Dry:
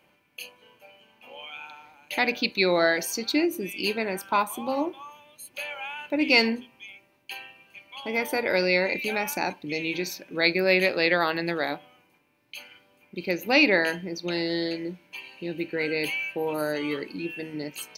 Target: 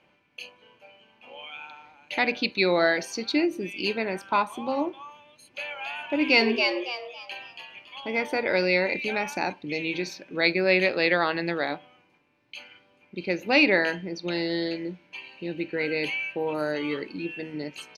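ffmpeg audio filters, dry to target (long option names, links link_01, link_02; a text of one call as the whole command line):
ffmpeg -i in.wav -filter_complex "[0:a]lowpass=5100,asplit=3[link_01][link_02][link_03];[link_01]afade=type=out:start_time=5.79:duration=0.02[link_04];[link_02]asplit=5[link_05][link_06][link_07][link_08][link_09];[link_06]adelay=279,afreqshift=120,volume=-4.5dB[link_10];[link_07]adelay=558,afreqshift=240,volume=-14.4dB[link_11];[link_08]adelay=837,afreqshift=360,volume=-24.3dB[link_12];[link_09]adelay=1116,afreqshift=480,volume=-34.2dB[link_13];[link_05][link_10][link_11][link_12][link_13]amix=inputs=5:normalize=0,afade=type=in:start_time=5.79:duration=0.02,afade=type=out:start_time=7.98:duration=0.02[link_14];[link_03]afade=type=in:start_time=7.98:duration=0.02[link_15];[link_04][link_14][link_15]amix=inputs=3:normalize=0" out.wav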